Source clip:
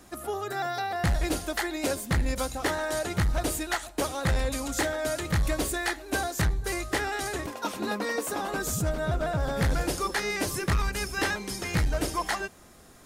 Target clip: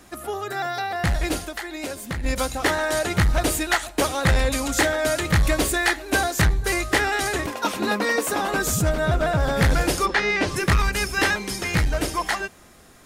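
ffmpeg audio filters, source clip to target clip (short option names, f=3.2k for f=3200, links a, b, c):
-filter_complex "[0:a]equalizer=f=2.3k:t=o:w=1.5:g=3.5,asplit=3[a][b][c];[a]afade=t=out:st=1.44:d=0.02[d];[b]acompressor=threshold=-33dB:ratio=4,afade=t=in:st=1.44:d=0.02,afade=t=out:st=2.23:d=0.02[e];[c]afade=t=in:st=2.23:d=0.02[f];[d][e][f]amix=inputs=3:normalize=0,asplit=3[g][h][i];[g]afade=t=out:st=10.05:d=0.02[j];[h]lowpass=4.1k,afade=t=in:st=10.05:d=0.02,afade=t=out:st=10.55:d=0.02[k];[i]afade=t=in:st=10.55:d=0.02[l];[j][k][l]amix=inputs=3:normalize=0,dynaudnorm=f=670:g=7:m=4dB,volume=2.5dB"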